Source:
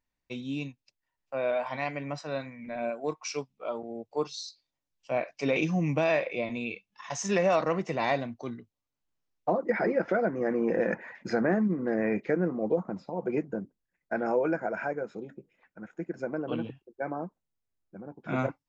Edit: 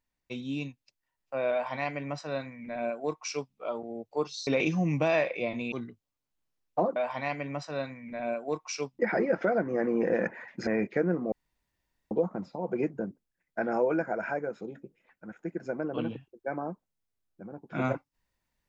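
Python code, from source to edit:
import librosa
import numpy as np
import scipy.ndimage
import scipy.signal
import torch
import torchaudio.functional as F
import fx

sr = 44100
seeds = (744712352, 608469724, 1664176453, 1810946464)

y = fx.edit(x, sr, fx.duplicate(start_s=1.52, length_s=2.03, to_s=9.66),
    fx.cut(start_s=4.47, length_s=0.96),
    fx.cut(start_s=6.68, length_s=1.74),
    fx.cut(start_s=11.34, length_s=0.66),
    fx.insert_room_tone(at_s=12.65, length_s=0.79), tone=tone)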